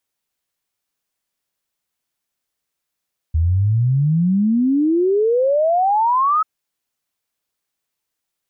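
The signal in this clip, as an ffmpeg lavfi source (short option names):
-f lavfi -i "aevalsrc='0.224*clip(min(t,3.09-t)/0.01,0,1)*sin(2*PI*77*3.09/log(1300/77)*(exp(log(1300/77)*t/3.09)-1))':d=3.09:s=44100"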